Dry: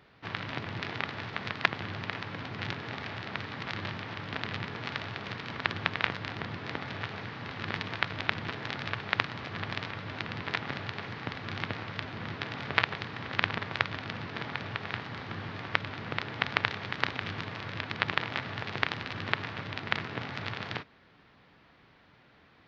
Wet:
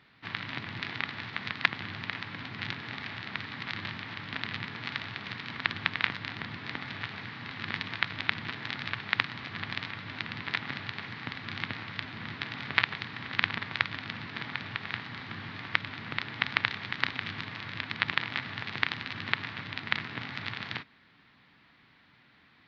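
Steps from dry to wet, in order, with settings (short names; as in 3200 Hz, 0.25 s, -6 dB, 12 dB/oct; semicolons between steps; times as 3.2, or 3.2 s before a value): ten-band EQ 125 Hz +4 dB, 250 Hz +7 dB, 500 Hz -4 dB, 1000 Hz +4 dB, 2000 Hz +8 dB, 4000 Hz +9 dB; gain -8 dB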